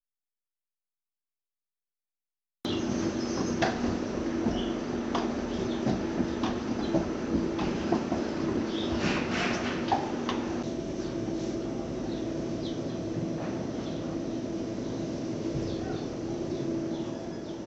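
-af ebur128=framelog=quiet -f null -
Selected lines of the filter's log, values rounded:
Integrated loudness:
  I:         -31.5 LUFS
  Threshold: -41.5 LUFS
Loudness range:
  LRA:         4.1 LU
  Threshold: -51.6 LUFS
  LRA low:   -33.8 LUFS
  LRA high:  -29.7 LUFS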